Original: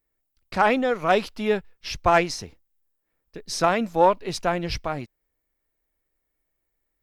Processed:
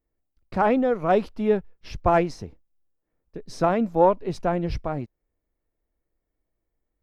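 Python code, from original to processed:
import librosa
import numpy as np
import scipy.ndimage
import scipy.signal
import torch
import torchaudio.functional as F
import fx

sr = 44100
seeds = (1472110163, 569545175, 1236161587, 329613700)

y = fx.tilt_shelf(x, sr, db=8.5, hz=1300.0)
y = F.gain(torch.from_numpy(y), -5.0).numpy()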